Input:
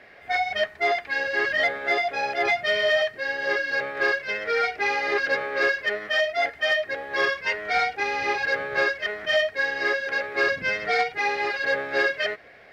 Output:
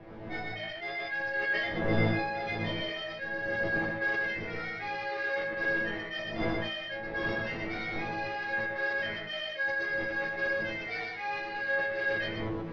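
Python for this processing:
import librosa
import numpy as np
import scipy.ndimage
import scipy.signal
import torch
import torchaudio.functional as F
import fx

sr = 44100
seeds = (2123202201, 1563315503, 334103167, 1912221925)

p1 = fx.dmg_wind(x, sr, seeds[0], corner_hz=440.0, level_db=-29.0)
p2 = scipy.signal.sosfilt(scipy.signal.butter(4, 5300.0, 'lowpass', fs=sr, output='sos'), p1)
p3 = fx.resonator_bank(p2, sr, root=45, chord='fifth', decay_s=0.32)
p4 = p3 + fx.echo_single(p3, sr, ms=121, db=-3.0, dry=0)
y = fx.sustainer(p4, sr, db_per_s=35.0)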